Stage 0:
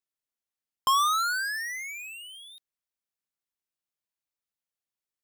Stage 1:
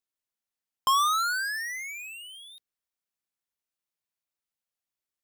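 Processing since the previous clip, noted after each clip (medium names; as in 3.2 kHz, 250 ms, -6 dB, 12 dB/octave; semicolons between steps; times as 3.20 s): hum notches 60/120/180/240/300/360/420/480 Hz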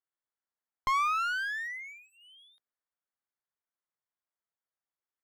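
Savitzky-Golay filter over 41 samples; bass shelf 390 Hz -10.5 dB; one-sided clip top -36 dBFS, bottom -21.5 dBFS; trim +1.5 dB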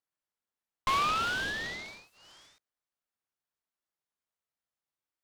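delay time shaken by noise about 1.7 kHz, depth 0.051 ms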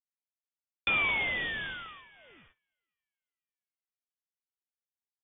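tape echo 503 ms, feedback 35%, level -21 dB, low-pass 2.3 kHz; frequency inversion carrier 3.5 kHz; gate -60 dBFS, range -17 dB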